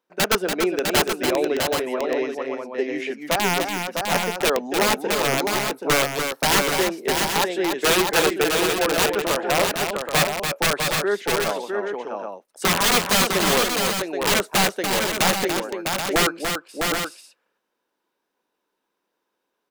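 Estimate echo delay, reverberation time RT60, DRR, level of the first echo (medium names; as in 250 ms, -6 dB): 288 ms, no reverb, no reverb, -6.0 dB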